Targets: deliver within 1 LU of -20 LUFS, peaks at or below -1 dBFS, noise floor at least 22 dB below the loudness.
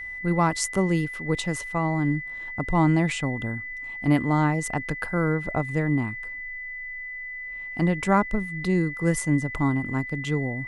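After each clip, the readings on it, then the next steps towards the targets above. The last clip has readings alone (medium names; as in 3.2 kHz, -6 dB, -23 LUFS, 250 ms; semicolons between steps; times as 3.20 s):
steady tone 2 kHz; tone level -33 dBFS; loudness -25.5 LUFS; peak level -8.0 dBFS; loudness target -20.0 LUFS
-> band-stop 2 kHz, Q 30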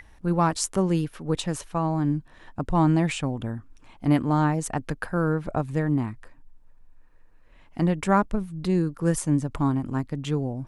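steady tone not found; loudness -25.5 LUFS; peak level -8.0 dBFS; loudness target -20.0 LUFS
-> trim +5.5 dB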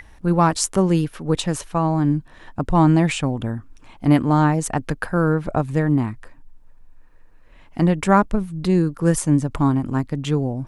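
loudness -20.0 LUFS; peak level -2.5 dBFS; noise floor -47 dBFS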